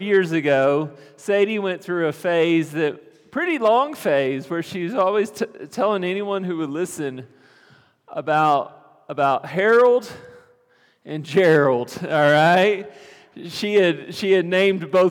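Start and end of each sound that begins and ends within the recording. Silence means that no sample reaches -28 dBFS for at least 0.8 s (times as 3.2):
8.13–10.16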